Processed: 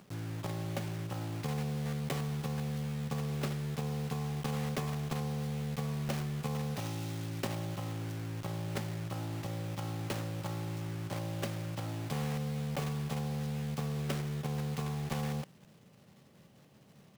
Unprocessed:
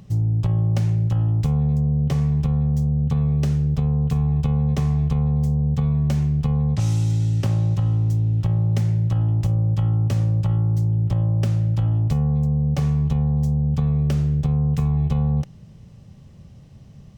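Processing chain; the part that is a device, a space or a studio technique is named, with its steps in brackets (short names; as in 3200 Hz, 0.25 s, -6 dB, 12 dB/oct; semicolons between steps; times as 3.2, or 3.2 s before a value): early digital voice recorder (BPF 280–3700 Hz; block floating point 3-bit); gain -4.5 dB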